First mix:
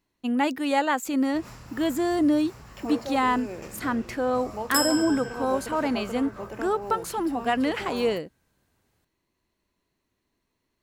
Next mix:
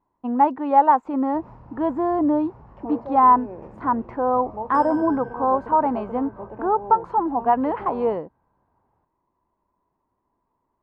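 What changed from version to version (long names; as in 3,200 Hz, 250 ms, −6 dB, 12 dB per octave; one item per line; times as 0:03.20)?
first sound: add parametric band 1,100 Hz −10 dB 1.3 octaves
master: add low-pass with resonance 950 Hz, resonance Q 4.7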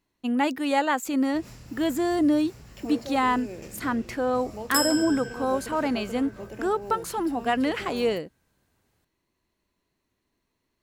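master: remove low-pass with resonance 950 Hz, resonance Q 4.7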